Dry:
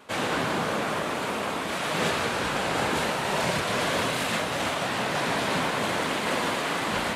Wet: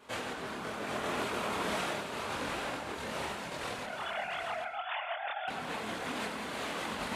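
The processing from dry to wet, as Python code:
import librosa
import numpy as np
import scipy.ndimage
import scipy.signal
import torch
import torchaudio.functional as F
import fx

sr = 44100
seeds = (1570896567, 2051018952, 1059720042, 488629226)

y = fx.sine_speech(x, sr, at=(3.83, 5.48))
y = fx.over_compress(y, sr, threshold_db=-30.0, ratio=-0.5)
y = fx.chorus_voices(y, sr, voices=6, hz=0.76, base_ms=26, depth_ms=2.6, mix_pct=55)
y = y + 10.0 ** (-8.0 / 20.0) * np.pad(y, (int(788 * sr / 1000.0), 0))[:len(y)]
y = fx.rev_plate(y, sr, seeds[0], rt60_s=0.52, hf_ratio=0.7, predelay_ms=80, drr_db=8.5)
y = y * 10.0 ** (-4.5 / 20.0)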